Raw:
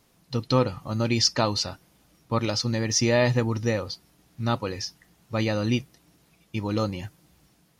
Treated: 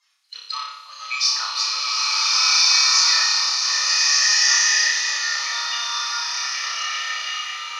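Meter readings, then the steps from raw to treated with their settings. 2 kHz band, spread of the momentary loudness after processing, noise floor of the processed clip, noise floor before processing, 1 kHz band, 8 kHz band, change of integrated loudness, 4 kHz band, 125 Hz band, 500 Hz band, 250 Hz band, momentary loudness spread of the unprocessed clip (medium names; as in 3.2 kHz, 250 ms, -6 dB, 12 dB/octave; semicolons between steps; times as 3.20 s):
+13.0 dB, 13 LU, -42 dBFS, -64 dBFS, +6.0 dB, +14.5 dB, +8.5 dB, +14.5 dB, under -40 dB, under -20 dB, under -40 dB, 13 LU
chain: coarse spectral quantiser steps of 30 dB; high-pass 1.1 kHz 24 dB/octave; tilt shelf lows -9.5 dB, about 1.4 kHz; in parallel at -5.5 dB: hard clipper -12 dBFS, distortion -11 dB; on the sum: distance through air 65 m; on a send: flutter echo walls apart 5.1 m, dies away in 0.77 s; on the sum: swelling reverb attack 1640 ms, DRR -9.5 dB; trim -6.5 dB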